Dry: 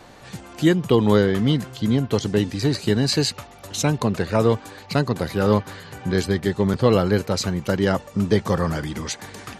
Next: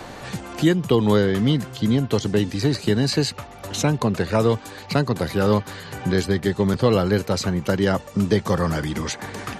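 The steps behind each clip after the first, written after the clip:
multiband upward and downward compressor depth 40%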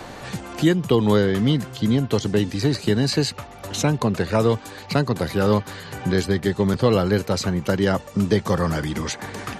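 no processing that can be heard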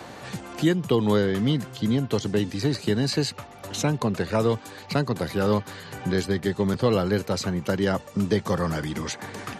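high-pass filter 81 Hz
level −3.5 dB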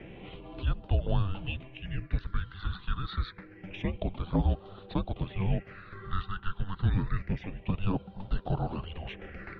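single-sideband voice off tune −390 Hz 370–3,400 Hz
all-pass phaser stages 6, 0.27 Hz, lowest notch 580–2,100 Hz
level −2 dB

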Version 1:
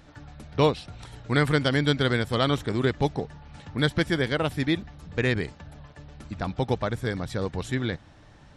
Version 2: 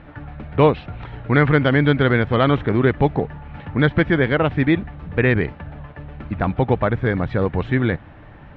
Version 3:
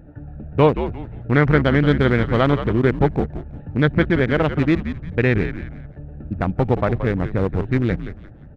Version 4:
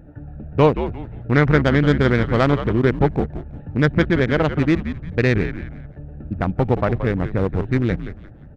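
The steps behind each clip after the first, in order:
low-pass filter 2,600 Hz 24 dB per octave; in parallel at −2.5 dB: brickwall limiter −19.5 dBFS, peak gain reduction 11 dB; on the sum: level +5 dB
adaptive Wiener filter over 41 samples; echo with shifted repeats 175 ms, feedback 31%, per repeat −82 Hz, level −10 dB
stylus tracing distortion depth 0.055 ms

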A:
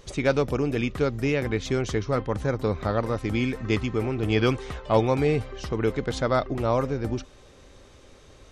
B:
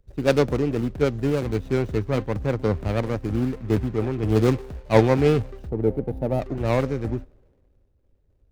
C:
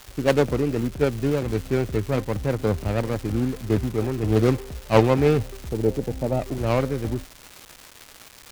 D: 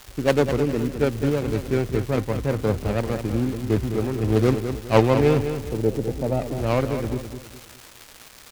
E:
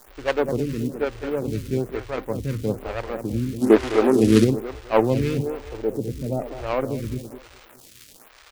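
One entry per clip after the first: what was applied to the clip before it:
running median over 41 samples; gain on a spectral selection 0:05.69–0:06.40, 930–9,100 Hz −12 dB; multiband upward and downward expander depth 70%; level +3.5 dB
phase distortion by the signal itself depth 0.17 ms; surface crackle 560 per second −31 dBFS
repeating echo 206 ms, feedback 35%, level −9 dB
mains-hum notches 50/100/150 Hz; gain on a spectral selection 0:03.62–0:04.44, 210–12,000 Hz +12 dB; phaser with staggered stages 1.1 Hz

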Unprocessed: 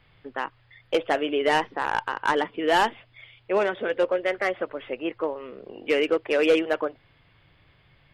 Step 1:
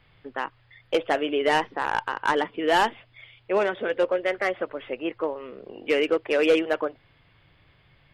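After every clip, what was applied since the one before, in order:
no processing that can be heard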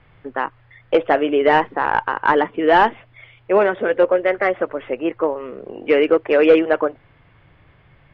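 low-pass filter 2,000 Hz 12 dB per octave
level +8 dB

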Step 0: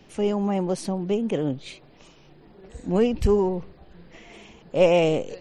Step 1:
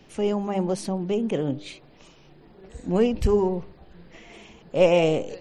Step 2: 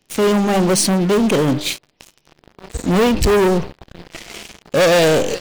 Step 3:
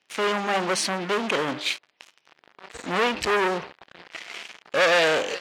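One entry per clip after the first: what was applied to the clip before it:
hum removal 100.2 Hz, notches 10
leveller curve on the samples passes 5; high-shelf EQ 2,800 Hz +8.5 dB; level −4 dB
resonant band-pass 1,800 Hz, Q 0.8

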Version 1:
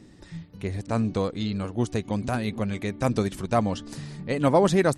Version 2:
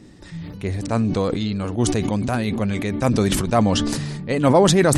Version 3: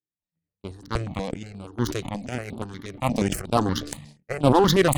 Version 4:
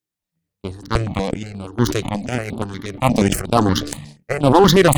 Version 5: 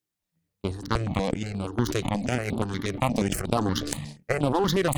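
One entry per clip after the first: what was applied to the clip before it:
level that may fall only so fast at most 26 dB per second; level +4 dB
harmonic generator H 7 −18 dB, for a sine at −3 dBFS; noise gate −43 dBFS, range −35 dB; step-sequenced phaser 8.4 Hz 230–6,400 Hz
boost into a limiter +9 dB; level −1 dB
downward compressor 6 to 1, threshold −21 dBFS, peak gain reduction 13.5 dB

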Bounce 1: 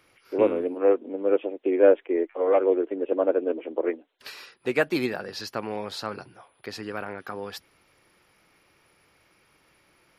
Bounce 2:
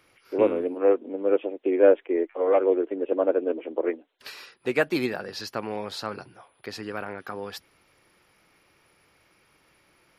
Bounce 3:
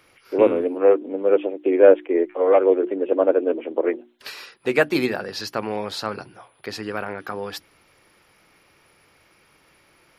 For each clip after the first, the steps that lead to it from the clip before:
no processing that can be heard
mains-hum notches 60/120/180/240/300/360 Hz; level +5 dB

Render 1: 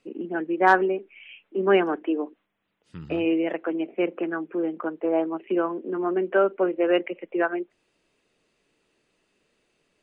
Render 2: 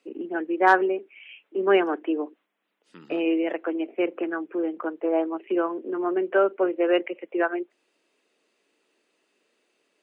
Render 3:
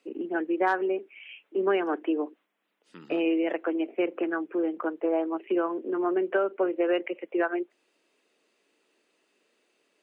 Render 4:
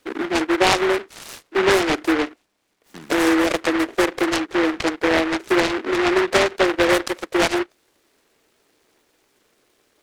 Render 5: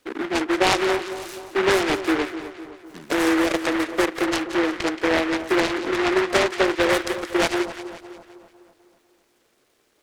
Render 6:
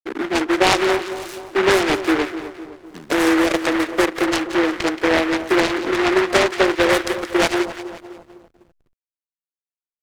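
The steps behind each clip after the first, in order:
high-pass filter 250 Hz 24 dB per octave
downward compressor 6 to 1, threshold −21 dBFS, peak gain reduction 9 dB
short delay modulated by noise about 1,300 Hz, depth 0.21 ms; level +8 dB
echo with a time of its own for lows and highs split 1,200 Hz, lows 252 ms, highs 176 ms, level −11.5 dB; level −2.5 dB
slack as between gear wheels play −43 dBFS; level +3.5 dB

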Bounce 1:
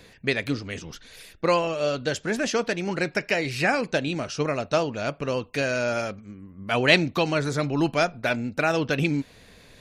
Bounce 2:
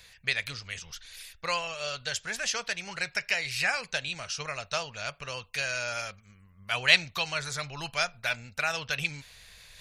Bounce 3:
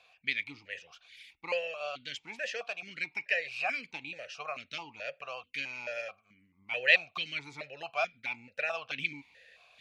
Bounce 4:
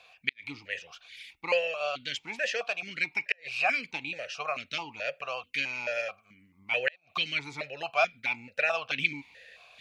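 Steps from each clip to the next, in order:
reversed playback; upward compression, threshold −43 dBFS; reversed playback; guitar amp tone stack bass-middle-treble 10-0-10; level +2.5 dB
formant filter that steps through the vowels 4.6 Hz; level +8 dB
gate with flip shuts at −17 dBFS, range −39 dB; level +6 dB

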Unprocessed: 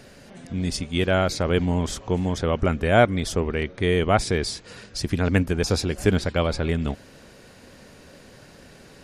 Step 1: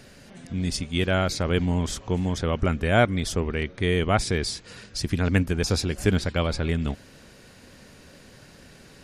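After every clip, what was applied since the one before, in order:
parametric band 590 Hz −4 dB 2.1 octaves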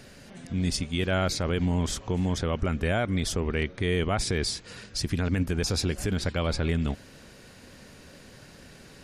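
brickwall limiter −16.5 dBFS, peak gain reduction 9.5 dB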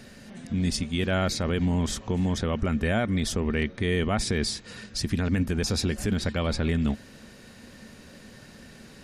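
hollow resonant body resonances 220/1,800/3,800 Hz, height 9 dB, ringing for 95 ms

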